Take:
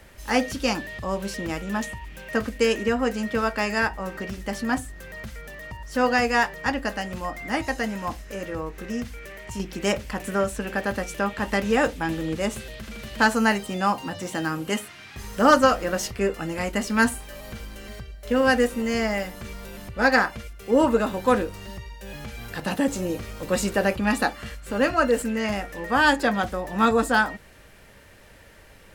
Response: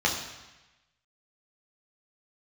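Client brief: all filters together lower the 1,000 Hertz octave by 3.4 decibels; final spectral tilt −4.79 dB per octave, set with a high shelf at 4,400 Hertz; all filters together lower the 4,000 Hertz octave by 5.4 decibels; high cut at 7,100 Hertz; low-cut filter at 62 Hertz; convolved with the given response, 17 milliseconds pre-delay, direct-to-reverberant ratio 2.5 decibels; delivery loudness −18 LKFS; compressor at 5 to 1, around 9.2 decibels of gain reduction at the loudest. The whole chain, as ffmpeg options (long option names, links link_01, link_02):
-filter_complex "[0:a]highpass=62,lowpass=7100,equalizer=frequency=1000:width_type=o:gain=-4,equalizer=frequency=4000:width_type=o:gain=-3.5,highshelf=frequency=4400:gain=-6.5,acompressor=threshold=-24dB:ratio=5,asplit=2[link_01][link_02];[1:a]atrim=start_sample=2205,adelay=17[link_03];[link_02][link_03]afir=irnorm=-1:irlink=0,volume=-15.5dB[link_04];[link_01][link_04]amix=inputs=2:normalize=0,volume=11dB"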